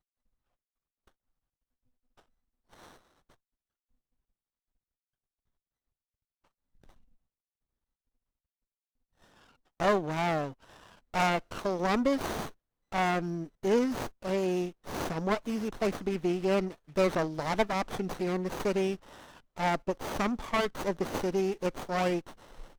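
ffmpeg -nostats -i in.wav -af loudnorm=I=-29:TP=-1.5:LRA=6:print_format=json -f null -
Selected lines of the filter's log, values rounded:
"input_i" : "-31.2",
"input_tp" : "-11.7",
"input_lra" : "1.7",
"input_thresh" : "-42.0",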